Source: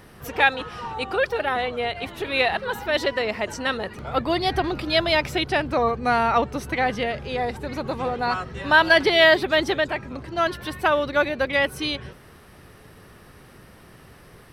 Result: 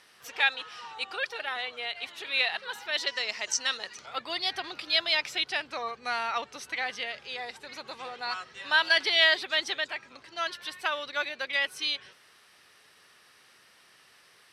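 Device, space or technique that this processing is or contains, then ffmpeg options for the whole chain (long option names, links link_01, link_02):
piezo pickup straight into a mixer: -filter_complex "[0:a]lowpass=5000,aderivative,asettb=1/sr,asplit=3[link_01][link_02][link_03];[link_01]atrim=end=3.074[link_04];[link_02]atrim=start=3.07:end=4.06,asetpts=PTS-STARTPTS,afade=type=in:duration=0.004:curve=qsin,afade=type=out:start_time=0.986:duration=0.004:curve=qsin,equalizer=frequency=6100:width_type=o:width=0.77:gain=12.5[link_05];[link_03]atrim=start=4.056[link_06];[link_04][link_05]acrossfade=duration=0.004:curve1=hsin:curve2=qsin[link_07];[link_07][link_06]acrossfade=duration=0.004:curve1=qsin:curve2=hsin,volume=6dB"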